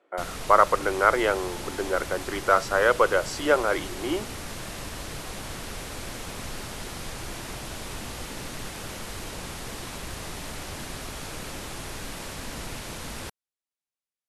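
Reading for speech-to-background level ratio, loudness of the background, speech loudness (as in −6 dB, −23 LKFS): 12.0 dB, −36.0 LKFS, −24.0 LKFS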